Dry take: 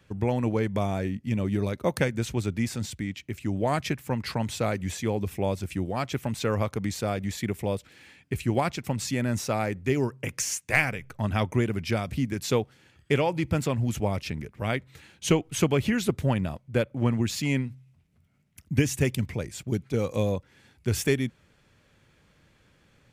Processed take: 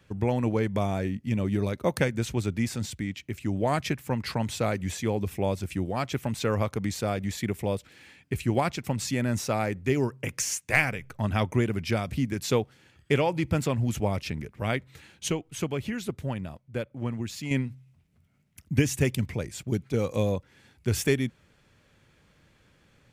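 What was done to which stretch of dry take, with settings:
15.28–17.51 s: gain -7 dB

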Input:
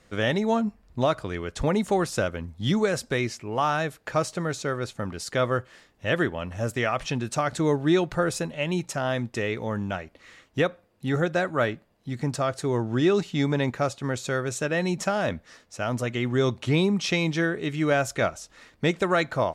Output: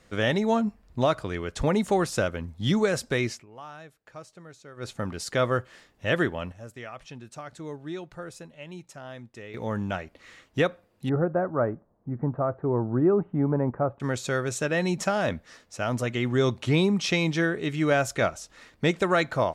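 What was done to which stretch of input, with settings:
3.32–4.90 s: dip -18.5 dB, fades 0.14 s
6.09–9.97 s: dip -14.5 dB, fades 0.43 s logarithmic
11.09–14.00 s: inverse Chebyshev low-pass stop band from 5.2 kHz, stop band 70 dB

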